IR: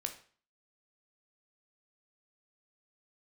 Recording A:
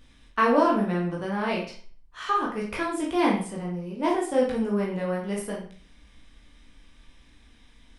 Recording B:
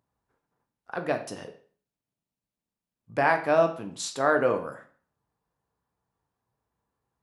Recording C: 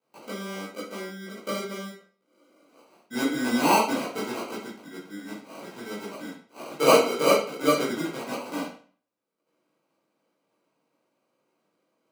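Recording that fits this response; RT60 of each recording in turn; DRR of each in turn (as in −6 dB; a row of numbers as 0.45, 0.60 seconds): B; 0.45, 0.45, 0.45 seconds; −4.0, 5.5, −9.5 decibels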